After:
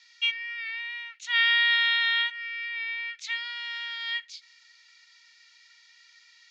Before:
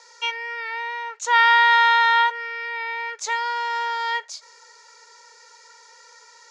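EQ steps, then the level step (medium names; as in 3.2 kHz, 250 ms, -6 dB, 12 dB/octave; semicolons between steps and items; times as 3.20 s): Butterworth band-pass 2.7 kHz, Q 1.5; tilt EQ +4 dB/octave; -4.5 dB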